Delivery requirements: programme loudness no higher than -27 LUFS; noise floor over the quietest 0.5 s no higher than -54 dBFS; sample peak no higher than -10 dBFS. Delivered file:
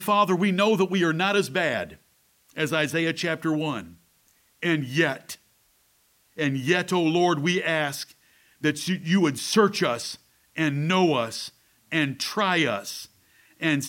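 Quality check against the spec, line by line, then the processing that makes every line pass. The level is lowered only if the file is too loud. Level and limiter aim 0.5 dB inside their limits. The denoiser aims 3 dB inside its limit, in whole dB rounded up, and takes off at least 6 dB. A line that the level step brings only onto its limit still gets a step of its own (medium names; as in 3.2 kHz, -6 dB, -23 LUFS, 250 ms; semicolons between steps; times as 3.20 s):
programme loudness -24.5 LUFS: fail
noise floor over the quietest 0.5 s -64 dBFS: pass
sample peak -7.0 dBFS: fail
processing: trim -3 dB; peak limiter -10.5 dBFS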